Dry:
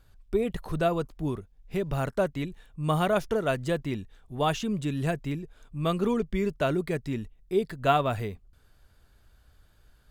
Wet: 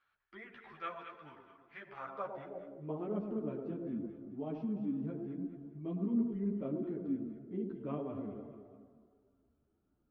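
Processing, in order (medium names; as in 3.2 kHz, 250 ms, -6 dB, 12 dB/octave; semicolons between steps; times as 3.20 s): band-stop 490 Hz, Q 12; on a send at -11 dB: reverberation RT60 2.0 s, pre-delay 48 ms; on the sum: formant shift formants -2 st; Savitzky-Golay filter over 15 samples; echo whose repeats swap between lows and highs 106 ms, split 900 Hz, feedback 61%, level -6.5 dB; in parallel at -2.5 dB: peak limiter -26.5 dBFS, peak gain reduction 15.5 dB; on the sum: band-pass sweep 1.7 kHz -> 280 Hz, 1.87–3.14 s; three-phase chorus; trim -4 dB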